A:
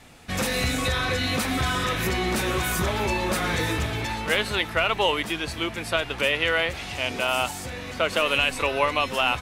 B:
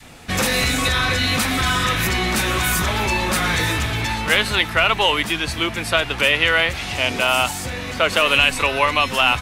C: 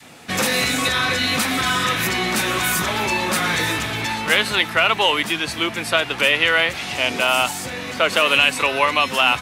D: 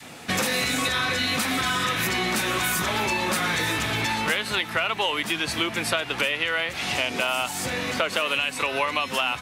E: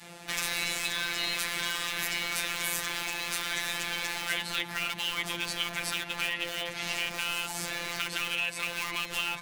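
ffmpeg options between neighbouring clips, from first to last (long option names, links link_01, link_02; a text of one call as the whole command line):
ffmpeg -i in.wav -filter_complex "[0:a]adynamicequalizer=threshold=0.0112:dfrequency=470:dqfactor=0.94:tfrequency=470:tqfactor=0.94:attack=5:release=100:ratio=0.375:range=3:mode=cutabove:tftype=bell,acrossover=split=680|1700[link_01][link_02][link_03];[link_01]asoftclip=type=hard:threshold=-28.5dB[link_04];[link_04][link_02][link_03]amix=inputs=3:normalize=0,volume=7.5dB" out.wav
ffmpeg -i in.wav -af "highpass=150" out.wav
ffmpeg -i in.wav -af "acompressor=threshold=-23dB:ratio=6,volume=1.5dB" out.wav
ffmpeg -i in.wav -filter_complex "[0:a]acrossover=split=1300[link_01][link_02];[link_01]aeval=exprs='(mod(28.2*val(0)+1,2)-1)/28.2':channel_layout=same[link_03];[link_03][link_02]amix=inputs=2:normalize=0,afftfilt=real='hypot(re,im)*cos(PI*b)':imag='0':win_size=1024:overlap=0.75,volume=-2dB" out.wav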